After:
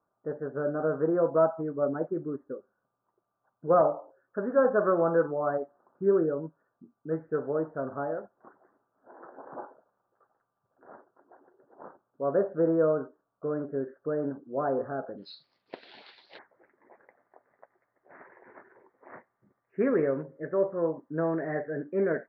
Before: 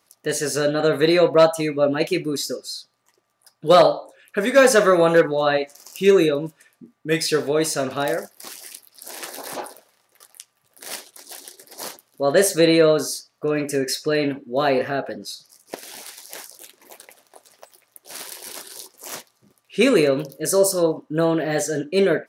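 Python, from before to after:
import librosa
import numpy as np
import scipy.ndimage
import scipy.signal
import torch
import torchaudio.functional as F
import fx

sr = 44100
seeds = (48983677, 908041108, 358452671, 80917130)

y = fx.steep_lowpass(x, sr, hz=fx.steps((0.0, 1500.0), (15.17, 4400.0), (16.37, 2000.0)), slope=72)
y = y * librosa.db_to_amplitude(-9.0)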